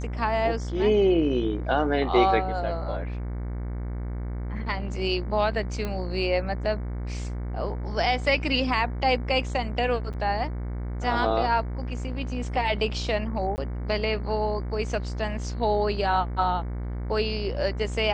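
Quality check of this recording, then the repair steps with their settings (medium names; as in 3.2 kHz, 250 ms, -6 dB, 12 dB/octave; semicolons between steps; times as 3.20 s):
buzz 60 Hz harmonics 38 -31 dBFS
5.85 s: pop -17 dBFS
10.13–10.14 s: dropout 7.6 ms
13.56–13.58 s: dropout 19 ms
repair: de-click; de-hum 60 Hz, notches 38; interpolate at 10.13 s, 7.6 ms; interpolate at 13.56 s, 19 ms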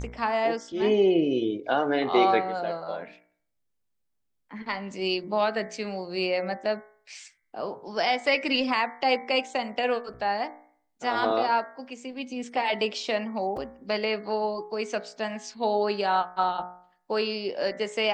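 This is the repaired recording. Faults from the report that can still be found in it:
nothing left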